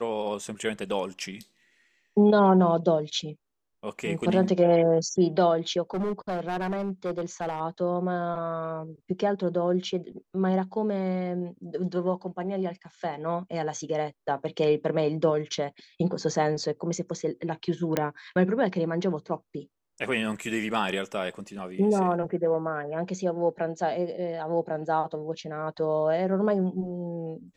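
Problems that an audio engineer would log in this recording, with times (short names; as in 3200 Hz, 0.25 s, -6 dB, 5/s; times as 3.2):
5.94–7.61 clipped -25 dBFS
17.97 pop -10 dBFS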